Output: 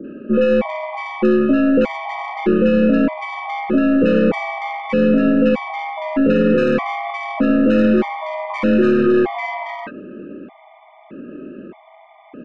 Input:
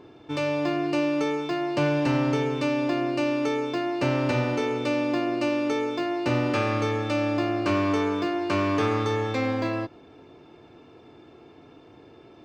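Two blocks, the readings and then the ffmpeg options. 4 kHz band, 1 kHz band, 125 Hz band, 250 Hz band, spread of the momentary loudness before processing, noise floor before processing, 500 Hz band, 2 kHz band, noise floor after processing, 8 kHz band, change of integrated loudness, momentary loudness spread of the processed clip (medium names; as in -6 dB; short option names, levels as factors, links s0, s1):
-0.5 dB, +5.0 dB, +1.5 dB, +10.0 dB, 4 LU, -51 dBFS, +8.5 dB, +6.0 dB, -47 dBFS, no reading, +8.5 dB, 15 LU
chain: -filter_complex "[0:a]equalizer=f=470:w=0.75:g=5,highpass=f=250:t=q:w=0.5412,highpass=f=250:t=q:w=1.307,lowpass=f=2800:t=q:w=0.5176,lowpass=f=2800:t=q:w=0.7071,lowpass=f=2800:t=q:w=1.932,afreqshift=-75,aeval=exprs='0.299*(cos(1*acos(clip(val(0)/0.299,-1,1)))-cos(1*PI/2))+0.0119*(cos(8*acos(clip(val(0)/0.299,-1,1)))-cos(8*PI/2))':c=same,asoftclip=type=tanh:threshold=0.15,acrossover=split=1000[s0][s1];[s1]adelay=40[s2];[s0][s2]amix=inputs=2:normalize=0,alimiter=level_in=9.44:limit=0.891:release=50:level=0:latency=1,afftfilt=real='re*gt(sin(2*PI*0.81*pts/sr)*(1-2*mod(floor(b*sr/1024/610),2)),0)':imag='im*gt(sin(2*PI*0.81*pts/sr)*(1-2*mod(floor(b*sr/1024/610),2)),0)':win_size=1024:overlap=0.75,volume=0.531"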